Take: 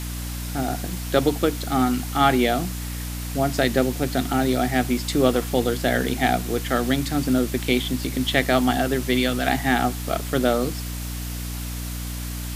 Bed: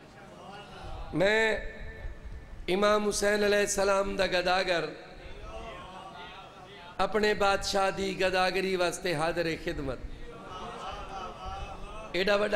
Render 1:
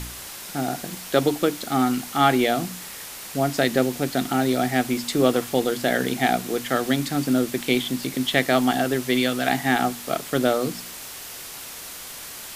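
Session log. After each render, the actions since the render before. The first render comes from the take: de-hum 60 Hz, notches 5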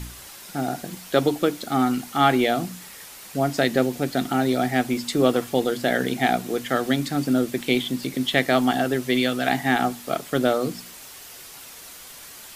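noise reduction 6 dB, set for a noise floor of -38 dBFS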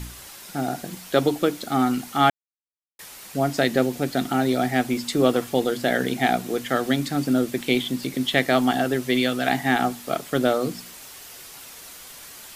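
2.30–2.99 s: mute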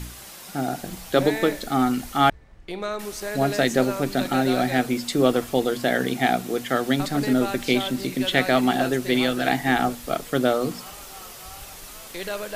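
add bed -5 dB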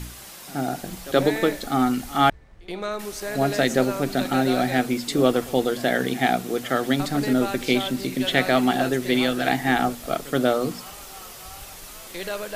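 pre-echo 76 ms -19.5 dB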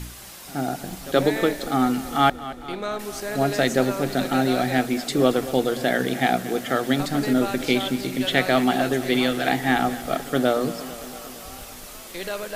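modulated delay 227 ms, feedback 70%, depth 60 cents, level -16 dB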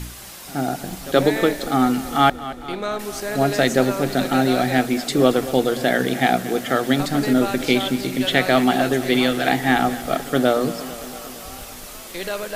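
trim +3 dB; peak limiter -2 dBFS, peak gain reduction 1.5 dB

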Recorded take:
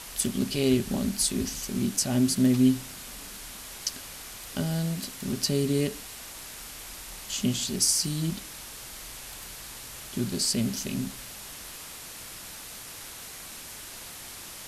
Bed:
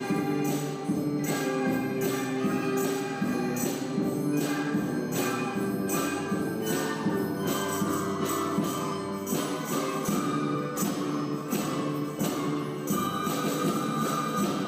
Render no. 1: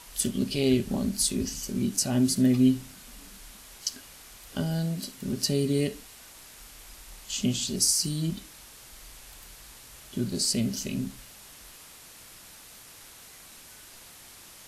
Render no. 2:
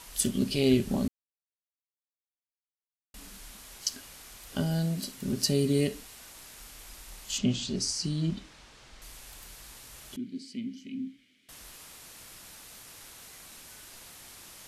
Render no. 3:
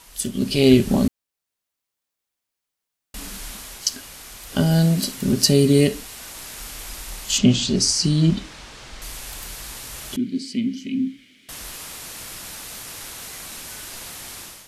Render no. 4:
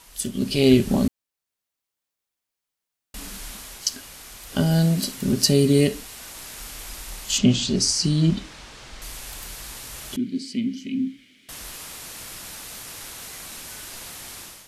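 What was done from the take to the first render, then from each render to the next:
noise print and reduce 7 dB
1.08–3.14 s: mute; 7.38–9.02 s: distance through air 110 m; 10.16–11.49 s: vowel filter i
level rider gain up to 13 dB
trim -2 dB

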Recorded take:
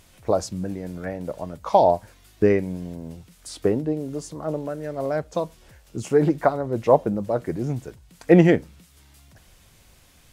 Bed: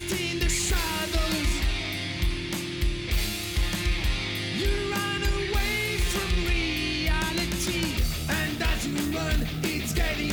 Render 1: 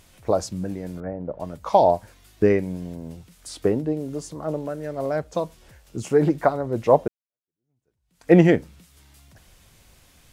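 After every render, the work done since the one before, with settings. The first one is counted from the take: 1.00–1.40 s: low-pass 1 kHz; 7.08–8.32 s: fade in exponential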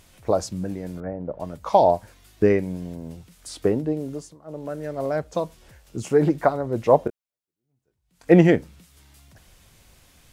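4.08–4.75 s: dip -18 dB, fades 0.31 s; 7.03–8.31 s: doubling 22 ms -10 dB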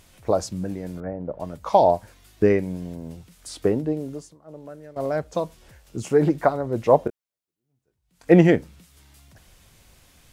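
3.91–4.96 s: fade out, to -14.5 dB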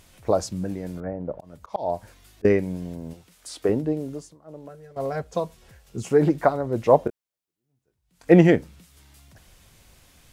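1.33–2.45 s: slow attack 316 ms; 3.13–3.69 s: tone controls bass -10 dB, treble -1 dB; 4.68–6.11 s: comb of notches 300 Hz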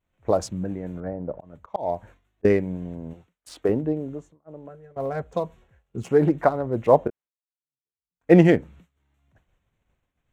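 local Wiener filter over 9 samples; expander -43 dBFS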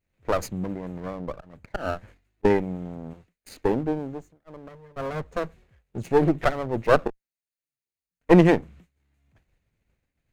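comb filter that takes the minimum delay 0.46 ms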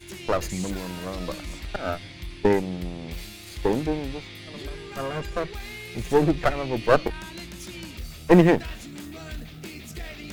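add bed -11 dB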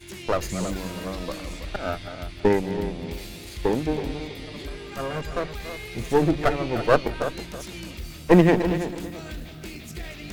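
chunks repeated in reverse 154 ms, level -11.5 dB; filtered feedback delay 327 ms, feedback 25%, level -10.5 dB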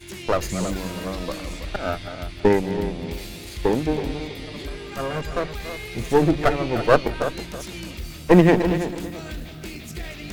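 trim +2.5 dB; peak limiter -2 dBFS, peak gain reduction 2 dB

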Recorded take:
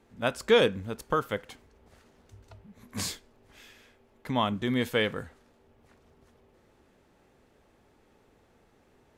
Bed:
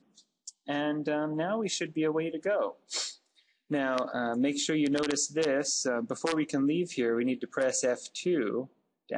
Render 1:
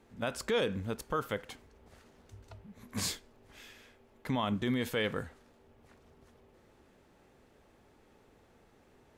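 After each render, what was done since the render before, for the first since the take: peak limiter -22.5 dBFS, peak gain reduction 12 dB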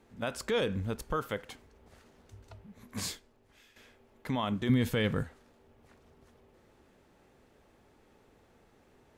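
0.51–1.19 s: bass shelf 85 Hz +11 dB; 2.71–3.76 s: fade out, to -11 dB; 4.69–5.23 s: tone controls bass +11 dB, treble +1 dB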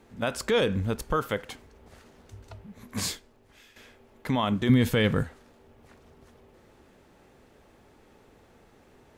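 trim +6 dB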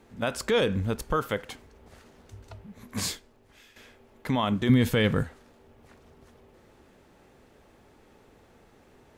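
no audible change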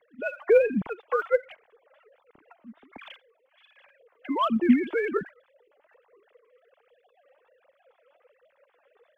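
formants replaced by sine waves; phaser 1.3 Hz, delay 3.9 ms, feedback 56%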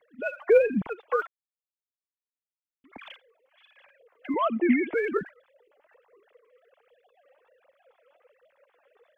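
1.27–2.84 s: mute; 4.34–4.94 s: cabinet simulation 290–2600 Hz, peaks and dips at 320 Hz +4 dB, 470 Hz +4 dB, 700 Hz +5 dB, 1 kHz -3 dB, 1.5 kHz -4 dB, 2.1 kHz +9 dB

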